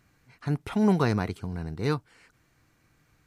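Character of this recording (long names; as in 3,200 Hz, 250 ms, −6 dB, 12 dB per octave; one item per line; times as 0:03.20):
background noise floor −67 dBFS
spectral slope −6.5 dB per octave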